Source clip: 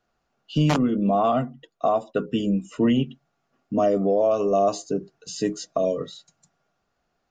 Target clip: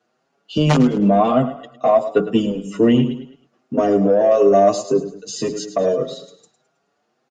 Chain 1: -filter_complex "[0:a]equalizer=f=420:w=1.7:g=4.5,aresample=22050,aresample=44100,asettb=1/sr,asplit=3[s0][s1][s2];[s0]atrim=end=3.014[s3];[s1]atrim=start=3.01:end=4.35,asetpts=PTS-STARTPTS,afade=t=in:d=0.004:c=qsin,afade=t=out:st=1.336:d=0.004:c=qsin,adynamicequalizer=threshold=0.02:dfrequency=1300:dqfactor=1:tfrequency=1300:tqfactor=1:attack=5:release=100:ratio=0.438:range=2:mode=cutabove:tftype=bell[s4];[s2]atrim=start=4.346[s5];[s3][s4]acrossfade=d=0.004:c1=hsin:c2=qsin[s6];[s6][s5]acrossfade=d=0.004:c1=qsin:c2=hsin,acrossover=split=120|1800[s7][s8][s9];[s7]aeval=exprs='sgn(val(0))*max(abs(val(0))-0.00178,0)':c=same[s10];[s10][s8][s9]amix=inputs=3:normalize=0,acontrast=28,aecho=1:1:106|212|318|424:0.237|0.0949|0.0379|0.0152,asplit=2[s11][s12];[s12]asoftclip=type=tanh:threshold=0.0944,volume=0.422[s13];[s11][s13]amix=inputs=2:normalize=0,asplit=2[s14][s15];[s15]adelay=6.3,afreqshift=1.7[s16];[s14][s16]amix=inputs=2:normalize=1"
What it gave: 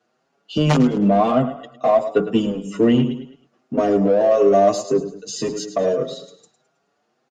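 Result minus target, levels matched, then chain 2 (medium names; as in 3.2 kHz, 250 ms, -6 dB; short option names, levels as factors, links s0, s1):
saturation: distortion +11 dB
-filter_complex "[0:a]equalizer=f=420:w=1.7:g=4.5,aresample=22050,aresample=44100,asettb=1/sr,asplit=3[s0][s1][s2];[s0]atrim=end=3.014[s3];[s1]atrim=start=3.01:end=4.35,asetpts=PTS-STARTPTS,afade=t=in:d=0.004:c=qsin,afade=t=out:st=1.336:d=0.004:c=qsin,adynamicequalizer=threshold=0.02:dfrequency=1300:dqfactor=1:tfrequency=1300:tqfactor=1:attack=5:release=100:ratio=0.438:range=2:mode=cutabove:tftype=bell[s4];[s2]atrim=start=4.346[s5];[s3][s4]acrossfade=d=0.004:c1=hsin:c2=qsin[s6];[s6][s5]acrossfade=d=0.004:c1=qsin:c2=hsin,acrossover=split=120|1800[s7][s8][s9];[s7]aeval=exprs='sgn(val(0))*max(abs(val(0))-0.00178,0)':c=same[s10];[s10][s8][s9]amix=inputs=3:normalize=0,acontrast=28,aecho=1:1:106|212|318|424:0.237|0.0949|0.0379|0.0152,asplit=2[s11][s12];[s12]asoftclip=type=tanh:threshold=0.355,volume=0.422[s13];[s11][s13]amix=inputs=2:normalize=0,asplit=2[s14][s15];[s15]adelay=6.3,afreqshift=1.7[s16];[s14][s16]amix=inputs=2:normalize=1"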